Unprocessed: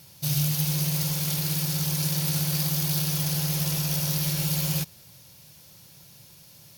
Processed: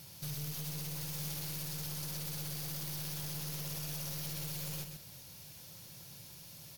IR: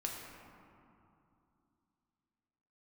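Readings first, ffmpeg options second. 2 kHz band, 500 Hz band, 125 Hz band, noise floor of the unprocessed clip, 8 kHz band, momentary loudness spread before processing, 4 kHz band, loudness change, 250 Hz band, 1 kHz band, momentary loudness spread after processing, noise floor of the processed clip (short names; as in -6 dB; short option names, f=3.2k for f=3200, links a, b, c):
-12.0 dB, -11.5 dB, -15.5 dB, -51 dBFS, -13.0 dB, 1 LU, -13.0 dB, -15.0 dB, -16.0 dB, -11.5 dB, 11 LU, -53 dBFS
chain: -filter_complex "[0:a]acompressor=threshold=-31dB:ratio=6,aeval=exprs='(tanh(63.1*val(0)+0.25)-tanh(0.25))/63.1':c=same,asplit=2[a][b];[b]aecho=0:1:129:0.447[c];[a][c]amix=inputs=2:normalize=0,volume=-1dB"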